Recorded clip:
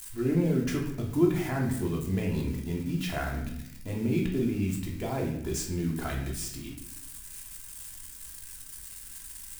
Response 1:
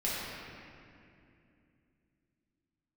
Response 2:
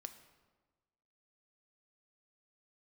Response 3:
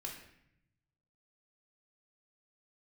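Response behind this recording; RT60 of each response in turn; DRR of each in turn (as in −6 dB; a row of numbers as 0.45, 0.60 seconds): 3; 2.6, 1.3, 0.75 seconds; −9.0, 7.5, −1.5 decibels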